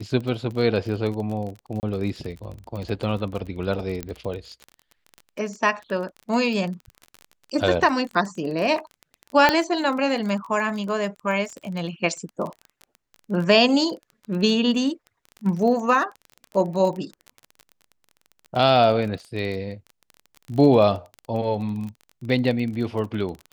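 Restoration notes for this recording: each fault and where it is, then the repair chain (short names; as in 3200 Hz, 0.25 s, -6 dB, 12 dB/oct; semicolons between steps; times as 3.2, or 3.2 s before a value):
crackle 26/s -30 dBFS
1.8–1.83 gap 29 ms
4.03 pop -14 dBFS
9.49 pop -3 dBFS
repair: de-click; interpolate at 1.8, 29 ms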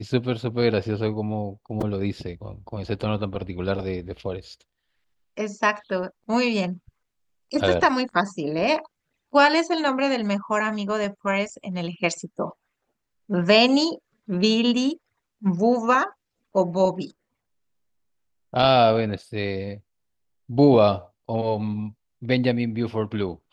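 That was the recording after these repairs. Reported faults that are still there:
none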